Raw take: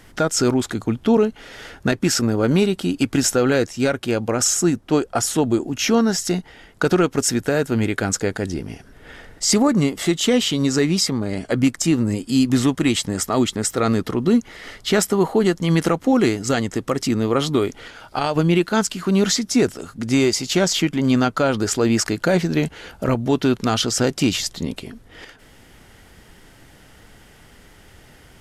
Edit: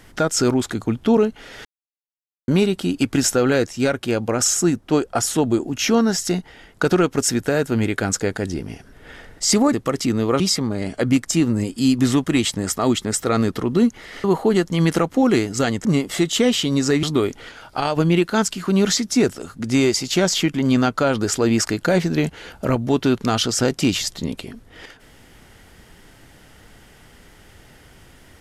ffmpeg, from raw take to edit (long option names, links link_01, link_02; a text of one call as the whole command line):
ffmpeg -i in.wav -filter_complex "[0:a]asplit=8[link_01][link_02][link_03][link_04][link_05][link_06][link_07][link_08];[link_01]atrim=end=1.65,asetpts=PTS-STARTPTS,afade=type=out:start_time=1.646:duration=0.004:curve=hsin[link_09];[link_02]atrim=start=1.65:end=2.48,asetpts=PTS-STARTPTS,volume=0[link_10];[link_03]atrim=start=2.48:end=9.732,asetpts=PTS-STARTPTS,afade=type=in:duration=0.004:curve=hsin[link_11];[link_04]atrim=start=16.748:end=17.422[link_12];[link_05]atrim=start=10.908:end=14.752[link_13];[link_06]atrim=start=15.138:end=16.752[link_14];[link_07]atrim=start=9.728:end=10.912[link_15];[link_08]atrim=start=17.418[link_16];[link_09][link_10][link_11]concat=n=3:v=0:a=1[link_17];[link_17][link_12]acrossfade=duration=0.004:curve1=hsin:curve2=hsin[link_18];[link_18][link_13]acrossfade=duration=0.004:curve1=hsin:curve2=hsin[link_19];[link_19][link_14]acrossfade=duration=0.004:curve1=hsin:curve2=hsin[link_20];[link_20][link_15]acrossfade=duration=0.004:curve1=hsin:curve2=hsin[link_21];[link_21][link_16]acrossfade=duration=0.004:curve1=hsin:curve2=hsin" out.wav